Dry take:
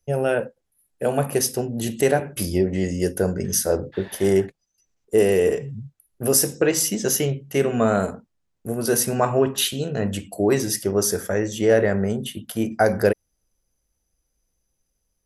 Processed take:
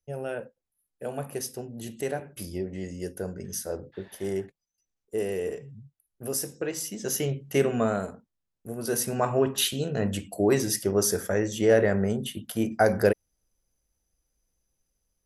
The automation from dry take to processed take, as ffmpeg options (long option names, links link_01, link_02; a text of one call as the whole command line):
ffmpeg -i in.wav -af "volume=4.5dB,afade=type=in:start_time=6.94:duration=0.61:silence=0.316228,afade=type=out:start_time=7.55:duration=0.47:silence=0.421697,afade=type=in:start_time=8.69:duration=1:silence=0.473151" out.wav